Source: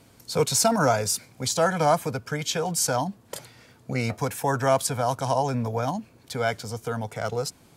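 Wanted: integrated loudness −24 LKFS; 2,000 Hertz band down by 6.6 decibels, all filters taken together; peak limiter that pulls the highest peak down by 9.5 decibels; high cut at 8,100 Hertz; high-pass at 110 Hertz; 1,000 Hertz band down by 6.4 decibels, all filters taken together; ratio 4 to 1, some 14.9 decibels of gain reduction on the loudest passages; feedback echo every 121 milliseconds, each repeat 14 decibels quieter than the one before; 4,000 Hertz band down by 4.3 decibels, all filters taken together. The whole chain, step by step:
high-pass filter 110 Hz
low-pass filter 8,100 Hz
parametric band 1,000 Hz −8.5 dB
parametric band 2,000 Hz −4.5 dB
parametric band 4,000 Hz −4 dB
downward compressor 4 to 1, threshold −38 dBFS
brickwall limiter −34.5 dBFS
repeating echo 121 ms, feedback 20%, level −14 dB
level +19.5 dB

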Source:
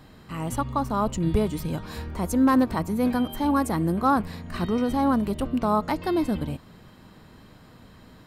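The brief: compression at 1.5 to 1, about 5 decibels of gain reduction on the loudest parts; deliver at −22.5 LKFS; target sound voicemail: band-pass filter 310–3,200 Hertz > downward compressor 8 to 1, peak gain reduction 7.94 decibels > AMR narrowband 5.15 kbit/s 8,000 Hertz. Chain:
downward compressor 1.5 to 1, threshold −30 dBFS
band-pass filter 310–3,200 Hz
downward compressor 8 to 1, threshold −29 dBFS
level +14 dB
AMR narrowband 5.15 kbit/s 8,000 Hz

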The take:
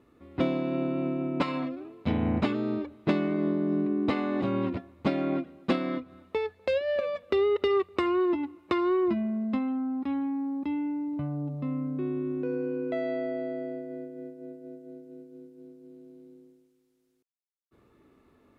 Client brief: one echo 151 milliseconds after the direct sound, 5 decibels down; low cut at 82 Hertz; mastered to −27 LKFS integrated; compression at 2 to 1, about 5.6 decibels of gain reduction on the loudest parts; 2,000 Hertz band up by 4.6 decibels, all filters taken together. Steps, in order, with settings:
high-pass filter 82 Hz
parametric band 2,000 Hz +5.5 dB
downward compressor 2 to 1, threshold −31 dBFS
single-tap delay 151 ms −5 dB
level +5 dB

